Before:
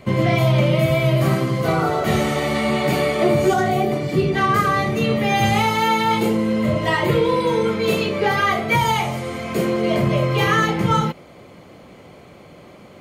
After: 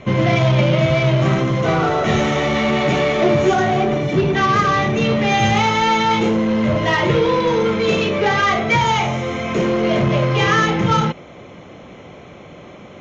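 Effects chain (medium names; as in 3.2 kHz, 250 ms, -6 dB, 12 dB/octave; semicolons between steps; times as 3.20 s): Butterworth band-stop 4.6 kHz, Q 4.7; in parallel at -7 dB: wavefolder -21.5 dBFS; on the sum: elliptic low-pass 6.5 kHz, stop band 40 dB; trim +2.5 dB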